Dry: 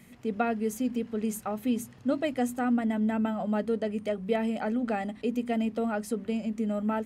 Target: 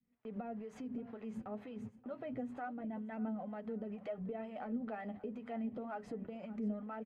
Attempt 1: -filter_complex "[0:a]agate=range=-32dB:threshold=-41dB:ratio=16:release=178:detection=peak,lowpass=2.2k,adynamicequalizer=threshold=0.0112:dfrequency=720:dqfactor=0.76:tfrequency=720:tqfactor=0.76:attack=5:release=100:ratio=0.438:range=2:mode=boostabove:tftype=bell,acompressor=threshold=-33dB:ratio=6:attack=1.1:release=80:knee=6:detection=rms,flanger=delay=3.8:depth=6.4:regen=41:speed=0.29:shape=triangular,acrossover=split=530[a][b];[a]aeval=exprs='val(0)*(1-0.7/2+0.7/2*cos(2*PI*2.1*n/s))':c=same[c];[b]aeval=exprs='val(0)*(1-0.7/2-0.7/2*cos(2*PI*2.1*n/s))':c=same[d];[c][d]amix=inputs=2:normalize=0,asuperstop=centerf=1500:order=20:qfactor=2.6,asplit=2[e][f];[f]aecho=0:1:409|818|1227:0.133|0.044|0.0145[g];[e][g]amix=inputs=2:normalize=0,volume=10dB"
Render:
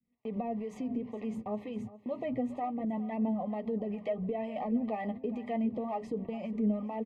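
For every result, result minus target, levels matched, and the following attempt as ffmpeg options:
compressor: peak gain reduction -8.5 dB; echo 0.17 s early; 2000 Hz band -5.5 dB
-filter_complex "[0:a]agate=range=-32dB:threshold=-41dB:ratio=16:release=178:detection=peak,lowpass=2.2k,adynamicequalizer=threshold=0.0112:dfrequency=720:dqfactor=0.76:tfrequency=720:tqfactor=0.76:attack=5:release=100:ratio=0.438:range=2:mode=boostabove:tftype=bell,acompressor=threshold=-43.5dB:ratio=6:attack=1.1:release=80:knee=6:detection=rms,flanger=delay=3.8:depth=6.4:regen=41:speed=0.29:shape=triangular,acrossover=split=530[a][b];[a]aeval=exprs='val(0)*(1-0.7/2+0.7/2*cos(2*PI*2.1*n/s))':c=same[c];[b]aeval=exprs='val(0)*(1-0.7/2-0.7/2*cos(2*PI*2.1*n/s))':c=same[d];[c][d]amix=inputs=2:normalize=0,asuperstop=centerf=1500:order=20:qfactor=2.6,asplit=2[e][f];[f]aecho=0:1:409|818|1227:0.133|0.044|0.0145[g];[e][g]amix=inputs=2:normalize=0,volume=10dB"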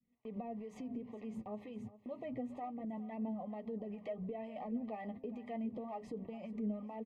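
echo 0.17 s early; 2000 Hz band -5.5 dB
-filter_complex "[0:a]agate=range=-32dB:threshold=-41dB:ratio=16:release=178:detection=peak,lowpass=2.2k,adynamicequalizer=threshold=0.0112:dfrequency=720:dqfactor=0.76:tfrequency=720:tqfactor=0.76:attack=5:release=100:ratio=0.438:range=2:mode=boostabove:tftype=bell,acompressor=threshold=-43.5dB:ratio=6:attack=1.1:release=80:knee=6:detection=rms,flanger=delay=3.8:depth=6.4:regen=41:speed=0.29:shape=triangular,acrossover=split=530[a][b];[a]aeval=exprs='val(0)*(1-0.7/2+0.7/2*cos(2*PI*2.1*n/s))':c=same[c];[b]aeval=exprs='val(0)*(1-0.7/2-0.7/2*cos(2*PI*2.1*n/s))':c=same[d];[c][d]amix=inputs=2:normalize=0,asuperstop=centerf=1500:order=20:qfactor=2.6,asplit=2[e][f];[f]aecho=0:1:579|1158|1737:0.133|0.044|0.0145[g];[e][g]amix=inputs=2:normalize=0,volume=10dB"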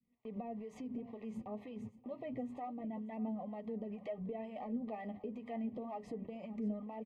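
2000 Hz band -5.5 dB
-filter_complex "[0:a]agate=range=-32dB:threshold=-41dB:ratio=16:release=178:detection=peak,lowpass=2.2k,adynamicequalizer=threshold=0.0112:dfrequency=720:dqfactor=0.76:tfrequency=720:tqfactor=0.76:attack=5:release=100:ratio=0.438:range=2:mode=boostabove:tftype=bell,acompressor=threshold=-43.5dB:ratio=6:attack=1.1:release=80:knee=6:detection=rms,flanger=delay=3.8:depth=6.4:regen=41:speed=0.29:shape=triangular,acrossover=split=530[a][b];[a]aeval=exprs='val(0)*(1-0.7/2+0.7/2*cos(2*PI*2.1*n/s))':c=same[c];[b]aeval=exprs='val(0)*(1-0.7/2-0.7/2*cos(2*PI*2.1*n/s))':c=same[d];[c][d]amix=inputs=2:normalize=0,asplit=2[e][f];[f]aecho=0:1:579|1158|1737:0.133|0.044|0.0145[g];[e][g]amix=inputs=2:normalize=0,volume=10dB"

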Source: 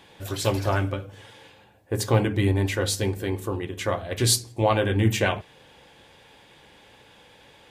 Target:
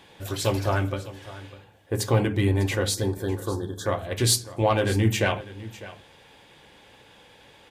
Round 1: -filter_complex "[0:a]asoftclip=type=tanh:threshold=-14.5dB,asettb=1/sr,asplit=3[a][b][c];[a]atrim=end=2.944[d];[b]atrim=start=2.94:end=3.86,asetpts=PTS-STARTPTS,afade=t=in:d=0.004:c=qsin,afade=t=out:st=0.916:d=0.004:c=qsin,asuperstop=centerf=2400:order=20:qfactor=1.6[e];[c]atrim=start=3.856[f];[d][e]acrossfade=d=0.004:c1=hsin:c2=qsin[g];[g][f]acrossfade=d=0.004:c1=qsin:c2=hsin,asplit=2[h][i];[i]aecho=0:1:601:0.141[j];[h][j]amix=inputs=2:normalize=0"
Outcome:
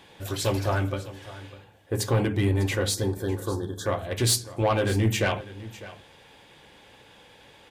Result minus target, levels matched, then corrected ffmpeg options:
soft clip: distortion +10 dB
-filter_complex "[0:a]asoftclip=type=tanh:threshold=-7dB,asettb=1/sr,asplit=3[a][b][c];[a]atrim=end=2.944[d];[b]atrim=start=2.94:end=3.86,asetpts=PTS-STARTPTS,afade=t=in:d=0.004:c=qsin,afade=t=out:st=0.916:d=0.004:c=qsin,asuperstop=centerf=2400:order=20:qfactor=1.6[e];[c]atrim=start=3.856[f];[d][e]acrossfade=d=0.004:c1=hsin:c2=qsin[g];[g][f]acrossfade=d=0.004:c1=qsin:c2=hsin,asplit=2[h][i];[i]aecho=0:1:601:0.141[j];[h][j]amix=inputs=2:normalize=0"

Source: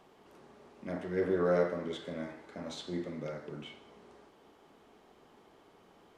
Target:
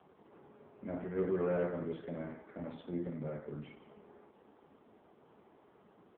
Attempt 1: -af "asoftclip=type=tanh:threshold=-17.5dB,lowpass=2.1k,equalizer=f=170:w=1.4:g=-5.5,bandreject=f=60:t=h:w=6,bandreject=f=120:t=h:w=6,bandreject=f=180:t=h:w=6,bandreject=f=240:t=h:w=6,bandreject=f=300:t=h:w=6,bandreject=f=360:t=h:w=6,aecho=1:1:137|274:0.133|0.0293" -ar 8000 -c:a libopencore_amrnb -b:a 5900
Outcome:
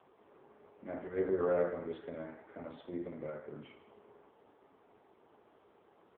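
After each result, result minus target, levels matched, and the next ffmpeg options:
soft clip: distortion -14 dB; 125 Hz band -8.0 dB
-af "asoftclip=type=tanh:threshold=-28dB,lowpass=2.1k,equalizer=f=170:w=1.4:g=-5.5,bandreject=f=60:t=h:w=6,bandreject=f=120:t=h:w=6,bandreject=f=180:t=h:w=6,bandreject=f=240:t=h:w=6,bandreject=f=300:t=h:w=6,bandreject=f=360:t=h:w=6,aecho=1:1:137|274:0.133|0.0293" -ar 8000 -c:a libopencore_amrnb -b:a 5900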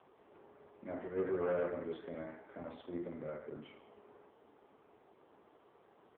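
125 Hz band -7.0 dB
-af "asoftclip=type=tanh:threshold=-28dB,lowpass=2.1k,equalizer=f=170:w=1.4:g=4.5,bandreject=f=60:t=h:w=6,bandreject=f=120:t=h:w=6,bandreject=f=180:t=h:w=6,bandreject=f=240:t=h:w=6,bandreject=f=300:t=h:w=6,bandreject=f=360:t=h:w=6,aecho=1:1:137|274:0.133|0.0293" -ar 8000 -c:a libopencore_amrnb -b:a 5900

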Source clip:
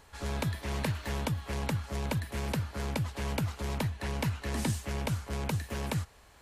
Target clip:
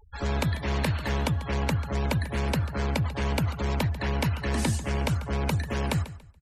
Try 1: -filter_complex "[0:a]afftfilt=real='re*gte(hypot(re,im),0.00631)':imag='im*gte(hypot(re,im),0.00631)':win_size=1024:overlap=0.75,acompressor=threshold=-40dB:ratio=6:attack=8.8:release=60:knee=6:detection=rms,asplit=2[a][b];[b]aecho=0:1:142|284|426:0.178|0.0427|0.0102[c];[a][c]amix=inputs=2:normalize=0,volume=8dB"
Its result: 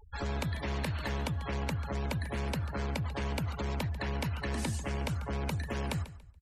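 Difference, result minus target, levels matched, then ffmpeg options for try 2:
compressor: peak gain reduction +8.5 dB
-filter_complex "[0:a]afftfilt=real='re*gte(hypot(re,im),0.00631)':imag='im*gte(hypot(re,im),0.00631)':win_size=1024:overlap=0.75,acompressor=threshold=-29.5dB:ratio=6:attack=8.8:release=60:knee=6:detection=rms,asplit=2[a][b];[b]aecho=0:1:142|284|426:0.178|0.0427|0.0102[c];[a][c]amix=inputs=2:normalize=0,volume=8dB"

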